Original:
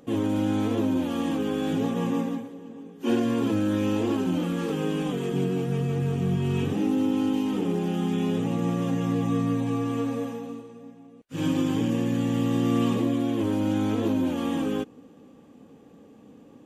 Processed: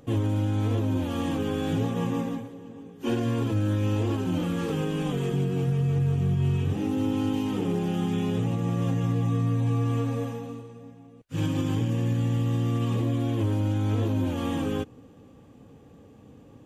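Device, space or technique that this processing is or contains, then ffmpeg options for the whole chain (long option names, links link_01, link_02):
car stereo with a boomy subwoofer: -af "lowshelf=frequency=150:width_type=q:width=1.5:gain=9.5,alimiter=limit=-17.5dB:level=0:latency=1:release=231"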